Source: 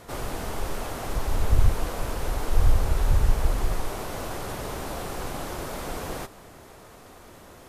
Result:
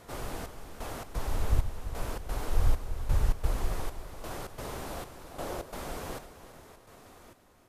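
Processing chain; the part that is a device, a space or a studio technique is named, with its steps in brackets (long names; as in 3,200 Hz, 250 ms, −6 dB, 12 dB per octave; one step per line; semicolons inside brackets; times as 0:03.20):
0:05.31–0:05.71: parametric band 530 Hz +7 dB 1.2 octaves
trance gate with a delay (gate pattern "xxxx...xx." 131 BPM −12 dB; repeating echo 339 ms, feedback 42%, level −12.5 dB)
level −5.5 dB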